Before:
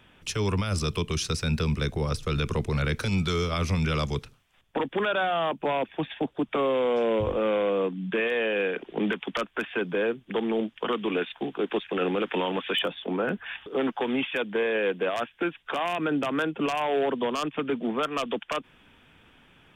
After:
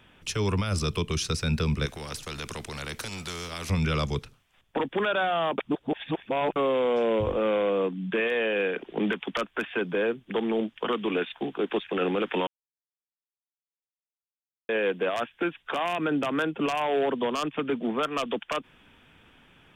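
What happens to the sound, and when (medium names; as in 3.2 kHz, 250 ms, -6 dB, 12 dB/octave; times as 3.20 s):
1.86–3.70 s: spectrum-flattening compressor 2:1
5.58–6.56 s: reverse
12.47–14.69 s: mute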